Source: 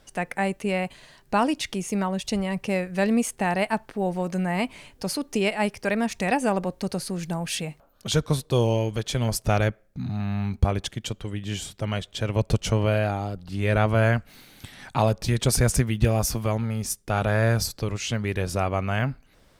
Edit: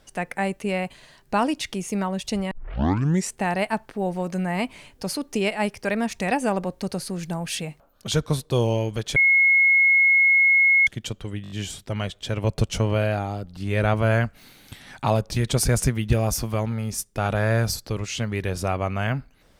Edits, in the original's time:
2.51 s: tape start 0.85 s
9.16–10.87 s: bleep 2.17 kHz -13.5 dBFS
11.43 s: stutter 0.02 s, 5 plays

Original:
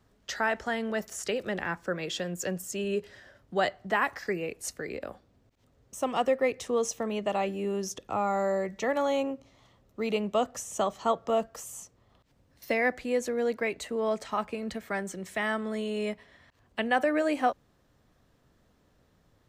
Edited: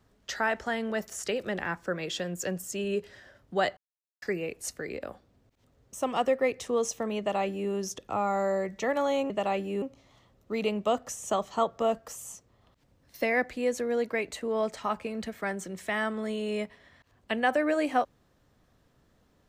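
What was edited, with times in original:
3.77–4.22 s: mute
7.19–7.71 s: copy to 9.30 s

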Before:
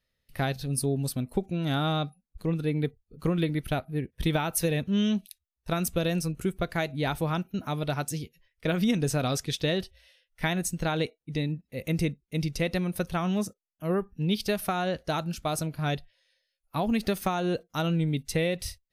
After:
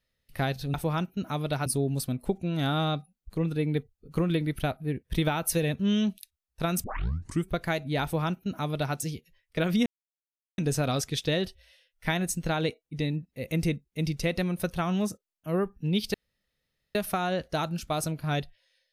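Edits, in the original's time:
5.92 s: tape start 0.62 s
7.11–8.03 s: copy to 0.74 s
8.94 s: insert silence 0.72 s
14.50 s: insert room tone 0.81 s

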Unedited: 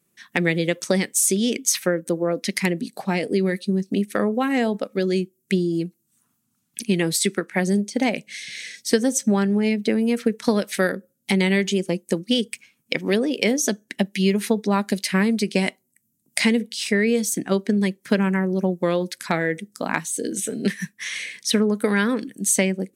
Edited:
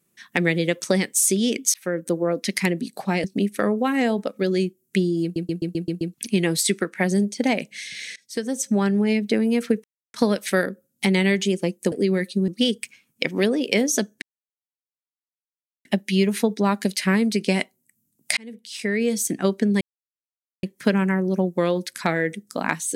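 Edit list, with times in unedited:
1.74–2.01 s: fade in
3.24–3.80 s: move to 12.18 s
5.79 s: stutter in place 0.13 s, 7 plays
8.72–9.45 s: fade in, from -21.5 dB
10.40 s: insert silence 0.30 s
13.92 s: insert silence 1.63 s
16.44–17.31 s: fade in
17.88 s: insert silence 0.82 s

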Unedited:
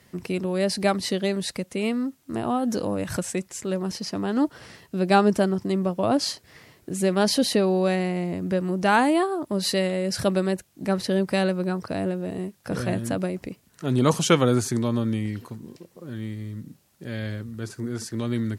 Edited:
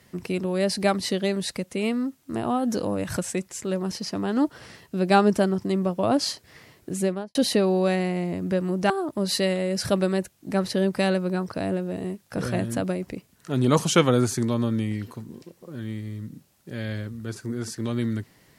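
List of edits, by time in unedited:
6.95–7.35 s: studio fade out
8.90–9.24 s: delete

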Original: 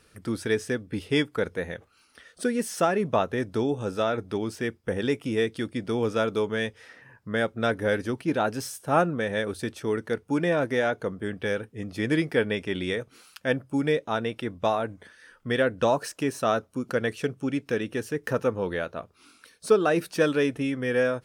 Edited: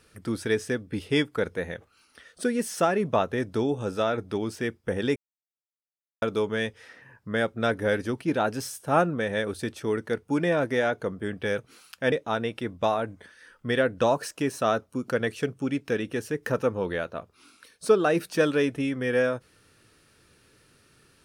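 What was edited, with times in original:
5.16–6.22 s: mute
11.58–13.01 s: delete
13.55–13.93 s: delete

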